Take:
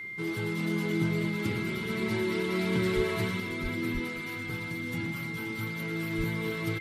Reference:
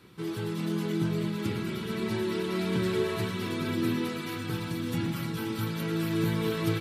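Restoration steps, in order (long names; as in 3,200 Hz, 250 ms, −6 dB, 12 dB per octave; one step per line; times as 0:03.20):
notch filter 2,100 Hz, Q 30
high-pass at the plosives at 0:02.95/0:03.62/0:03.93/0:06.17
echo removal 521 ms −21 dB
level 0 dB, from 0:03.40 +4.5 dB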